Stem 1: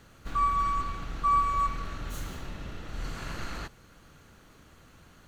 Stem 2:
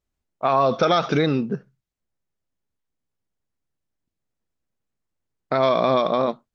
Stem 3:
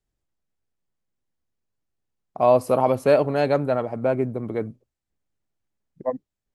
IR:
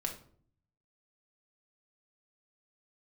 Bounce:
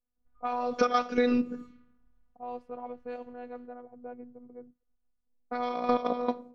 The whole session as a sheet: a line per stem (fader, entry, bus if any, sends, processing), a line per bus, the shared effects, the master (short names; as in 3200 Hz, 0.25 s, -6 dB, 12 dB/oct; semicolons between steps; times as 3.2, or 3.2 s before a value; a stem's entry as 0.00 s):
-19.5 dB, 0.00 s, no send, passive tone stack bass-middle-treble 10-0-10
+0.5 dB, 0.00 s, send -9.5 dB, notch 3600 Hz, Q 6.3; step gate "..xxx.....x.x" 191 bpm -12 dB
-18.5 dB, 0.00 s, no send, dry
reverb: on, RT60 0.55 s, pre-delay 4 ms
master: low-pass opened by the level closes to 560 Hz, open at -26 dBFS; robotiser 245 Hz; compressor 2:1, threshold -25 dBFS, peak gain reduction 7 dB